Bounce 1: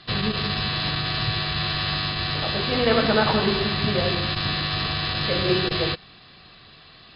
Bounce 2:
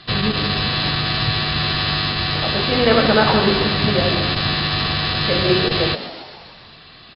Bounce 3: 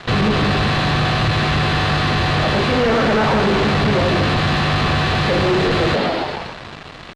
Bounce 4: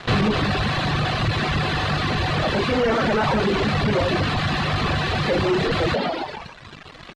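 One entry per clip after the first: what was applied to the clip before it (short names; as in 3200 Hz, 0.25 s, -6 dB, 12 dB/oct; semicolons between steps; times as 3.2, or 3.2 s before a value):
frequency-shifting echo 0.138 s, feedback 59%, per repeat +90 Hz, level -13 dB; gain +5 dB
fuzz box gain 35 dB, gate -41 dBFS; Bessel low-pass 2000 Hz, order 2
reverb removal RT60 1.3 s; gain -1.5 dB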